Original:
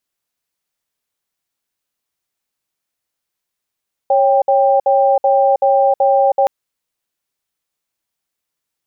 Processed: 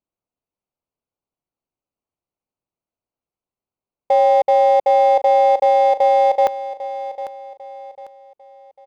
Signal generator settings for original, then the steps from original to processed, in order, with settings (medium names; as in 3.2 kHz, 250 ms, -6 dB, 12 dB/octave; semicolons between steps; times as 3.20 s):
cadence 551 Hz, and 791 Hz, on 0.32 s, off 0.06 s, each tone -12 dBFS 2.37 s
local Wiener filter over 25 samples; feedback delay 798 ms, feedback 35%, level -13 dB